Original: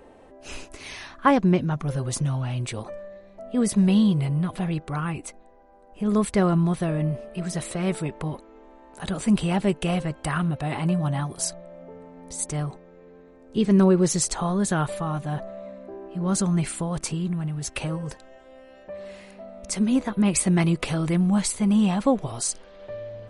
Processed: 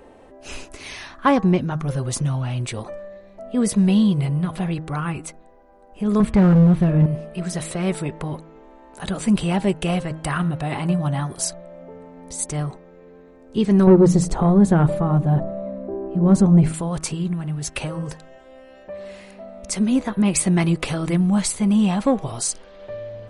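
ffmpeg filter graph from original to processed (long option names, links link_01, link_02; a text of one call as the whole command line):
ffmpeg -i in.wav -filter_complex "[0:a]asettb=1/sr,asplit=3[link_01][link_02][link_03];[link_01]atrim=end=6.204[link_04];[link_02]atrim=start=6.2:end=7.06,asetpts=PTS-STARTPTS,afade=type=in:duration=0.004:curve=qsin,afade=type=out:start_time=0.856:duration=0.004:curve=qsin,bass=frequency=250:gain=11,treble=frequency=4000:gain=-12,bandreject=frequency=112.4:width_type=h:width=4,bandreject=frequency=224.8:width_type=h:width=4,bandreject=frequency=337.2:width_type=h:width=4,bandreject=frequency=449.6:width_type=h:width=4,bandreject=frequency=562:width_type=h:width=4,bandreject=frequency=674.4:width_type=h:width=4,bandreject=frequency=786.8:width_type=h:width=4,bandreject=frequency=899.2:width_type=h:width=4,bandreject=frequency=1011.6:width_type=h:width=4,bandreject=frequency=1124:width_type=h:width=4,bandreject=frequency=1236.4:width_type=h:width=4,bandreject=frequency=1348.8:width_type=h:width=4,bandreject=frequency=1461.2:width_type=h:width=4,bandreject=frequency=1573.6:width_type=h:width=4,bandreject=frequency=1686:width_type=h:width=4,bandreject=frequency=1798.4:width_type=h:width=4,bandreject=frequency=1910.8:width_type=h:width=4,bandreject=frequency=2023.2:width_type=h:width=4,bandreject=frequency=2135.6:width_type=h:width=4,bandreject=frequency=2248:width_type=h:width=4,bandreject=frequency=2360.4:width_type=h:width=4,bandreject=frequency=2472.8:width_type=h:width=4,bandreject=frequency=2585.2:width_type=h:width=4,bandreject=frequency=2697.6:width_type=h:width=4,bandreject=frequency=2810:width_type=h:width=4,bandreject=frequency=2922.4:width_type=h:width=4,bandreject=frequency=3034.8:width_type=h:width=4,bandreject=frequency=3147.2:width_type=h:width=4,bandreject=frequency=3259.6:width_type=h:width=4,bandreject=frequency=3372:width_type=h:width=4,asoftclip=type=hard:threshold=-12dB[link_05];[link_03]atrim=start=7.056[link_06];[link_04][link_05]acrossfade=duration=0.004:curve1=hsin:curve2=qsin[link_07];[link_07][link_06]acrossfade=duration=0.004:curve1=qsin:curve2=hsin,asettb=1/sr,asplit=3[link_08][link_09][link_10];[link_08]atrim=end=13.874[link_11];[link_09]atrim=start=13.87:end=16.74,asetpts=PTS-STARTPTS,afade=type=in:duration=0.004:curve=qsin,afade=type=out:start_time=2.866:duration=0.004:curve=qsin,tiltshelf=frequency=1100:gain=10,bandreject=frequency=60:width_type=h:width=6,bandreject=frequency=120:width_type=h:width=6,bandreject=frequency=180:width_type=h:width=6,bandreject=frequency=240:width_type=h:width=6,bandreject=frequency=300:width_type=h:width=6[link_12];[link_10]atrim=start=16.736[link_13];[link_11][link_12]acrossfade=duration=0.004:curve1=hsin:curve2=qsin[link_14];[link_14][link_13]acrossfade=duration=0.004:curve1=qsin:curve2=hsin,acontrast=65,bandreject=frequency=159.3:width_type=h:width=4,bandreject=frequency=318.6:width_type=h:width=4,bandreject=frequency=477.9:width_type=h:width=4,bandreject=frequency=637.2:width_type=h:width=4,bandreject=frequency=796.5:width_type=h:width=4,bandreject=frequency=955.8:width_type=h:width=4,bandreject=frequency=1115.1:width_type=h:width=4,bandreject=frequency=1274.4:width_type=h:width=4,bandreject=frequency=1433.7:width_type=h:width=4,bandreject=frequency=1593:width_type=h:width=4,bandreject=frequency=1752.3:width_type=h:width=4,bandreject=frequency=1911.6:width_type=h:width=4,volume=-3.5dB" out.wav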